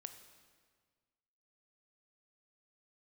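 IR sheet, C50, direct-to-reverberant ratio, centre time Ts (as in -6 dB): 9.5 dB, 8.0 dB, 18 ms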